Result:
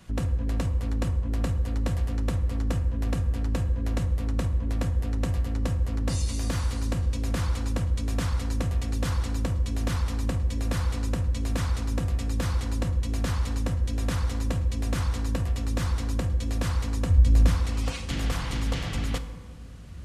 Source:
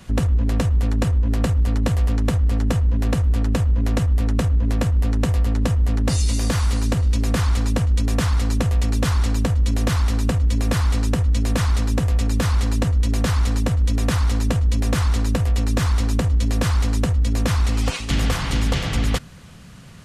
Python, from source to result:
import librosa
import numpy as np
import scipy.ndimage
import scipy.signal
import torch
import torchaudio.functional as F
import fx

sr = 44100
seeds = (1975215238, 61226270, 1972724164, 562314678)

p1 = fx.low_shelf(x, sr, hz=140.0, db=12.0, at=(17.1, 17.5))
p2 = p1 + fx.echo_wet_lowpass(p1, sr, ms=936, feedback_pct=79, hz=470.0, wet_db=-20, dry=0)
p3 = fx.rev_fdn(p2, sr, rt60_s=1.5, lf_ratio=1.0, hf_ratio=0.5, size_ms=18.0, drr_db=9.0)
y = F.gain(torch.from_numpy(p3), -8.5).numpy()